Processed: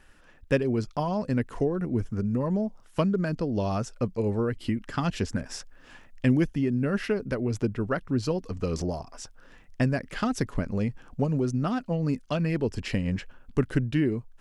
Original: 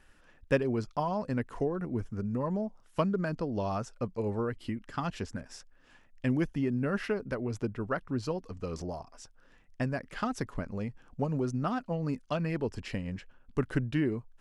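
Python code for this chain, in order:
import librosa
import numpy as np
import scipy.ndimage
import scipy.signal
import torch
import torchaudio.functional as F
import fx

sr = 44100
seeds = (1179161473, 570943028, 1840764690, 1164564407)

p1 = fx.dynamic_eq(x, sr, hz=1000.0, q=0.88, threshold_db=-47.0, ratio=4.0, max_db=-6)
p2 = fx.rider(p1, sr, range_db=10, speed_s=0.5)
y = p1 + F.gain(torch.from_numpy(p2), 0.5).numpy()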